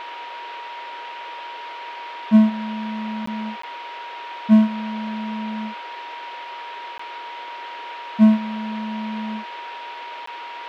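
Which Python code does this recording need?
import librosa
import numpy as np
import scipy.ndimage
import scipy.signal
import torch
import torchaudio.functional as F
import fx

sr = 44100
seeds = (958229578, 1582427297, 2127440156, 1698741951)

y = fx.notch(x, sr, hz=950.0, q=30.0)
y = fx.fix_interpolate(y, sr, at_s=(3.26, 3.62, 6.98, 10.26), length_ms=14.0)
y = fx.noise_reduce(y, sr, print_start_s=9.7, print_end_s=10.2, reduce_db=30.0)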